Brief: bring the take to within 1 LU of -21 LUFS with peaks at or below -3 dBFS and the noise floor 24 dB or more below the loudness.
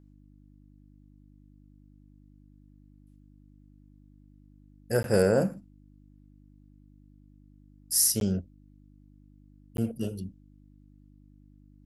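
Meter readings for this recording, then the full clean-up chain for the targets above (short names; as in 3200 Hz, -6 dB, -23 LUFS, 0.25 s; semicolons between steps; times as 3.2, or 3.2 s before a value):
dropouts 3; longest dropout 12 ms; hum 50 Hz; harmonics up to 300 Hz; hum level -55 dBFS; loudness -27.0 LUFS; peak -7.5 dBFS; loudness target -21.0 LUFS
-> interpolate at 5.03/8.2/9.77, 12 ms; de-hum 50 Hz, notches 6; gain +6 dB; limiter -3 dBFS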